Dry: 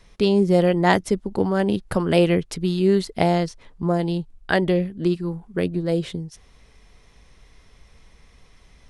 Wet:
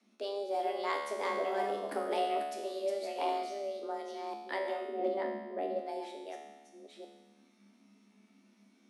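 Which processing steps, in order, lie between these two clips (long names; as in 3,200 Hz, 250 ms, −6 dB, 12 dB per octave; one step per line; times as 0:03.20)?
delay that plays each chunk backwards 542 ms, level −4 dB
0:01.15–0:02.14: leveller curve on the samples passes 1
0:04.88–0:05.80: spectral tilt −3 dB per octave
tuned comb filter 75 Hz, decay 1.2 s, harmonics all, mix 90%
frequency shifter +200 Hz
level −3 dB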